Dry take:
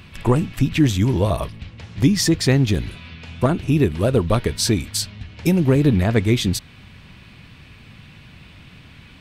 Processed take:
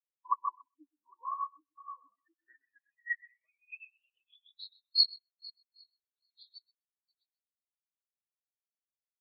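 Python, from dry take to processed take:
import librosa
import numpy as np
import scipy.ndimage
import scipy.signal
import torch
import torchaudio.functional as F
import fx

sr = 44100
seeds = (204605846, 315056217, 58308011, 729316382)

y = fx.reverse_delay_fb(x, sr, ms=402, feedback_pct=55, wet_db=-3)
y = scipy.signal.sosfilt(scipy.signal.butter(2, 200.0, 'highpass', fs=sr, output='sos'), y)
y = fx.env_lowpass(y, sr, base_hz=1200.0, full_db=-16.0)
y = fx.high_shelf(y, sr, hz=2100.0, db=5.5, at=(3.91, 4.54))
y = fx.filter_sweep_bandpass(y, sr, from_hz=1100.0, to_hz=4300.0, start_s=1.82, end_s=4.92, q=7.0)
y = fx.echo_bbd(y, sr, ms=127, stages=4096, feedback_pct=33, wet_db=-5.5)
y = fx.spectral_expand(y, sr, expansion=4.0)
y = y * librosa.db_to_amplitude(3.0)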